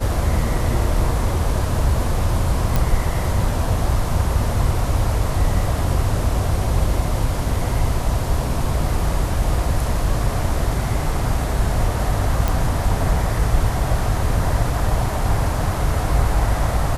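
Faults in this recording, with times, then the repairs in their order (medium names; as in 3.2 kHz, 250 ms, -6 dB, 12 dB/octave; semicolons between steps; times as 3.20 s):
2.76 s: pop
12.48 s: pop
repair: de-click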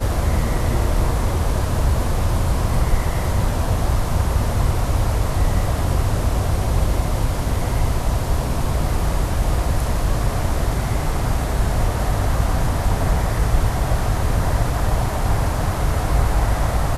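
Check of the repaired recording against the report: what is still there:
nothing left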